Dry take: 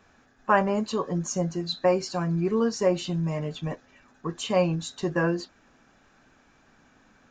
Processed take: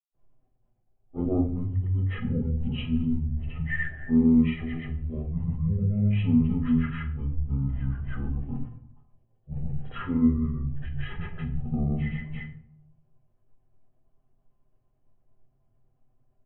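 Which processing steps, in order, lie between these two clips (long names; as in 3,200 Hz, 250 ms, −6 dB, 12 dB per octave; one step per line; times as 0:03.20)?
noise gate −51 dBFS, range −22 dB
RIAA equalisation playback
comb filter 3.5 ms, depth 47%
dynamic equaliser 1,700 Hz, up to −5 dB, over −39 dBFS, Q 1.1
in parallel at −1.5 dB: compressor whose output falls as the input rises −31 dBFS, ratio −1
on the sum: granular cloud 100 ms, grains 20 per second, pitch spread up and down by 0 semitones
change of speed 0.444×
rectangular room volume 1,000 cubic metres, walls furnished, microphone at 1.3 metres
level −7.5 dB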